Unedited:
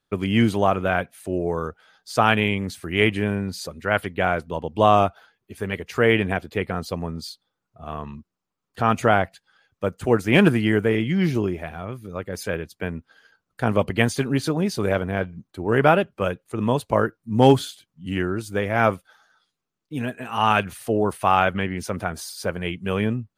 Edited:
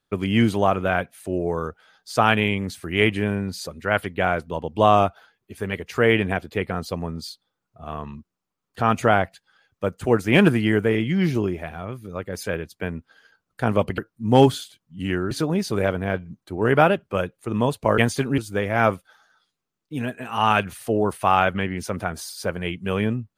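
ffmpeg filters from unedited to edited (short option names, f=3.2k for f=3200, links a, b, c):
-filter_complex "[0:a]asplit=5[a][b][c][d][e];[a]atrim=end=13.982[f];[b]atrim=start=17.048:end=18.382[g];[c]atrim=start=14.378:end=17.052[h];[d]atrim=start=13.978:end=14.382[i];[e]atrim=start=18.378[j];[f][g]acrossfade=d=0.004:c1=hsin:c2=hsin[k];[k][h]acrossfade=d=0.004:c1=hsin:c2=hsin[l];[l][i]acrossfade=d=0.004:c1=hsin:c2=hsin[m];[m][j]acrossfade=d=0.004:c1=hsin:c2=hsin"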